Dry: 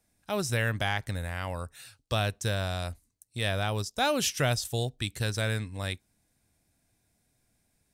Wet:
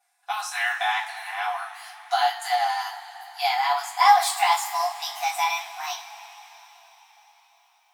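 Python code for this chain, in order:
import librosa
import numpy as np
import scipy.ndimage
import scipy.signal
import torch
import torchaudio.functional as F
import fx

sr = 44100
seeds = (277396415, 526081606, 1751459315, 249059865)

y = fx.pitch_glide(x, sr, semitones=10.5, runs='starting unshifted')
y = fx.brickwall_highpass(y, sr, low_hz=680.0)
y = fx.tilt_eq(y, sr, slope=-2.5)
y = fx.rev_double_slope(y, sr, seeds[0], early_s=0.29, late_s=4.7, knee_db=-22, drr_db=-7.5)
y = F.gain(torch.from_numpy(y), 2.5).numpy()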